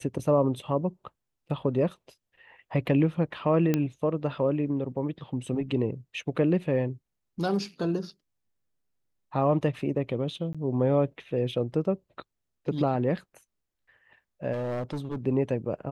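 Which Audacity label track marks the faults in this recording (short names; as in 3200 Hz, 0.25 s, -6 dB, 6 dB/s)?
3.740000	3.740000	pop -12 dBFS
10.530000	10.550000	gap 16 ms
14.520000	15.180000	clipped -28 dBFS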